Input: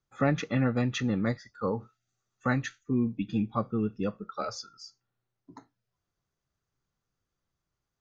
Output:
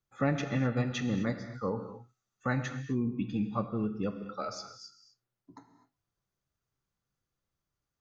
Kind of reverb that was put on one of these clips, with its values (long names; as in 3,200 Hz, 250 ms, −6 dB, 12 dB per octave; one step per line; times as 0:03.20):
reverb whose tail is shaped and stops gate 280 ms flat, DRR 7.5 dB
level −3.5 dB